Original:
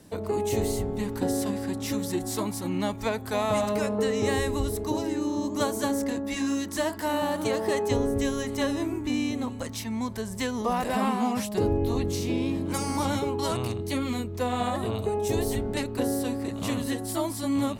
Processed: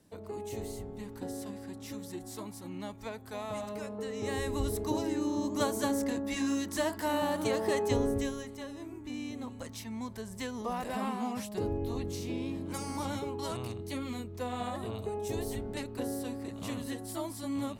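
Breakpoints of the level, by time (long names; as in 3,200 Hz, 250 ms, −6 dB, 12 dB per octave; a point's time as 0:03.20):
0:04.06 −12.5 dB
0:04.67 −3.5 dB
0:08.11 −3.5 dB
0:08.64 −16 dB
0:09.60 −8.5 dB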